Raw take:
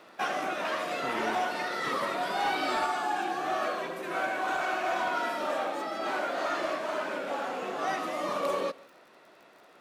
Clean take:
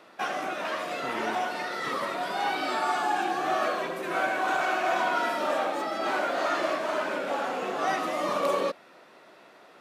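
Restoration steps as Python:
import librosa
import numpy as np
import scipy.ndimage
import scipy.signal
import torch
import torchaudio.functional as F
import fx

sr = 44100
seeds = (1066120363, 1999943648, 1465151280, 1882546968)

y = fx.fix_declip(x, sr, threshold_db=-22.0)
y = fx.fix_declick_ar(y, sr, threshold=6.5)
y = fx.fix_echo_inverse(y, sr, delay_ms=151, level_db=-22.5)
y = fx.gain(y, sr, db=fx.steps((0.0, 0.0), (2.86, 3.5)))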